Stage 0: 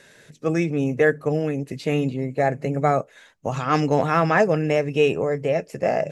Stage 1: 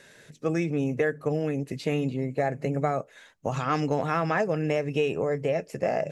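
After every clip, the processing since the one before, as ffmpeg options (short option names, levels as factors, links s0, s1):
-af "acompressor=threshold=0.1:ratio=4,volume=0.794"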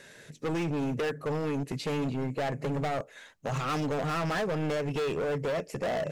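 -af "volume=28.2,asoftclip=hard,volume=0.0355,volume=1.19"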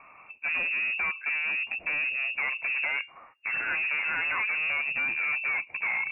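-af "lowpass=f=2400:t=q:w=0.5098,lowpass=f=2400:t=q:w=0.6013,lowpass=f=2400:t=q:w=0.9,lowpass=f=2400:t=q:w=2.563,afreqshift=-2800,volume=1.12"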